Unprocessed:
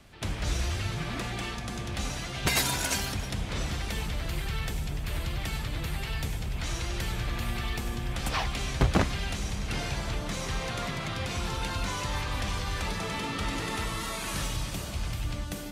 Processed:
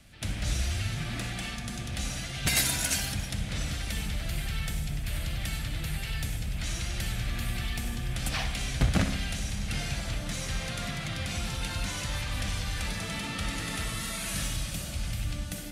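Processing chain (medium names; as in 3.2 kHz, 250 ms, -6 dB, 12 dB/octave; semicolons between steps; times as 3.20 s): fifteen-band graphic EQ 400 Hz -10 dB, 1 kHz -10 dB, 10 kHz +5 dB; on a send: tape echo 62 ms, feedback 66%, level -7 dB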